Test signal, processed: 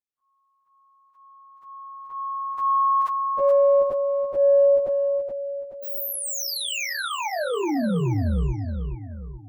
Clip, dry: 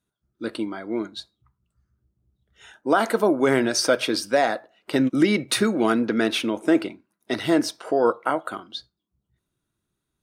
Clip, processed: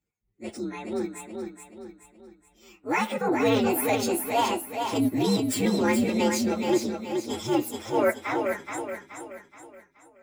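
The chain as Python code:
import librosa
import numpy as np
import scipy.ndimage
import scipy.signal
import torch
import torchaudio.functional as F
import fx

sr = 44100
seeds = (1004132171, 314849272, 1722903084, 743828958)

y = fx.partial_stretch(x, sr, pct=126)
y = fx.echo_feedback(y, sr, ms=425, feedback_pct=43, wet_db=-5.5)
y = fx.transient(y, sr, attack_db=-6, sustain_db=-1)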